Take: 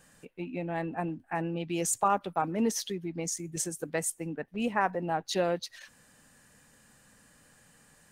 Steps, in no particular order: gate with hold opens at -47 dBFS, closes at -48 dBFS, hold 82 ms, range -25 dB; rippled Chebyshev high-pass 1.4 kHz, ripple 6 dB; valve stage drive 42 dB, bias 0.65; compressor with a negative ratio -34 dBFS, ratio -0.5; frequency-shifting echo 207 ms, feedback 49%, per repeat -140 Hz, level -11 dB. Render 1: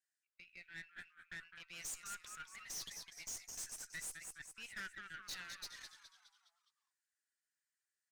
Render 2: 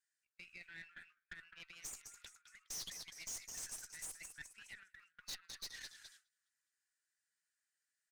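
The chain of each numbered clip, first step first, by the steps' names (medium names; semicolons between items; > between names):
rippled Chebyshev high-pass > gate with hold > frequency-shifting echo > valve stage > compressor with a negative ratio; compressor with a negative ratio > rippled Chebyshev high-pass > frequency-shifting echo > valve stage > gate with hold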